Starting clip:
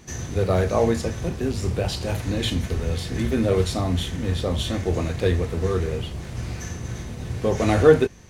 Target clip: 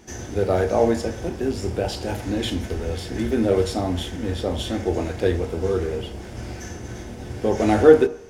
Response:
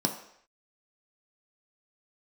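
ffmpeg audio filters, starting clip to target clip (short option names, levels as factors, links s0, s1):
-filter_complex "[0:a]asettb=1/sr,asplit=3[s0][s1][s2];[s0]atrim=end=5.384[s3];[s1]atrim=start=5.38:end=5.79,asetpts=PTS-STARTPTS,afade=t=in:d=0.004:c=qsin,afade=t=out:st=0.406:d=0.004:c=qsin,bandreject=f=1800:w=6.6[s4];[s2]atrim=start=5.786[s5];[s3][s4]acrossfade=d=0.004:c1=hsin:c2=qsin[s6];[s6][s5]acrossfade=d=0.004:c1=qsin:c2=hsin,asplit=2[s7][s8];[s8]bass=f=250:g=-10,treble=f=4000:g=-8[s9];[1:a]atrim=start_sample=2205,asetrate=42777,aresample=44100[s10];[s9][s10]afir=irnorm=-1:irlink=0,volume=0.266[s11];[s7][s11]amix=inputs=2:normalize=0,volume=0.75"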